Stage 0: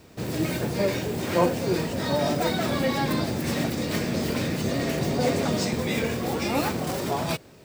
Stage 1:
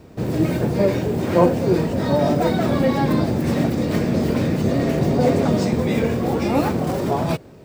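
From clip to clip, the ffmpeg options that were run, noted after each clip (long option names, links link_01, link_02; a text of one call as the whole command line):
ffmpeg -i in.wav -af "tiltshelf=frequency=1400:gain=6,volume=2dB" out.wav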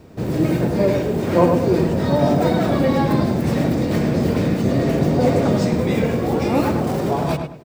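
ffmpeg -i in.wav -filter_complex "[0:a]asplit=2[link_01][link_02];[link_02]adelay=104,lowpass=frequency=2400:poles=1,volume=-5dB,asplit=2[link_03][link_04];[link_04]adelay=104,lowpass=frequency=2400:poles=1,volume=0.29,asplit=2[link_05][link_06];[link_06]adelay=104,lowpass=frequency=2400:poles=1,volume=0.29,asplit=2[link_07][link_08];[link_08]adelay=104,lowpass=frequency=2400:poles=1,volume=0.29[link_09];[link_01][link_03][link_05][link_07][link_09]amix=inputs=5:normalize=0" out.wav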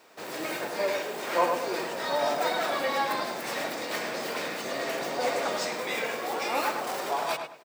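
ffmpeg -i in.wav -af "highpass=940" out.wav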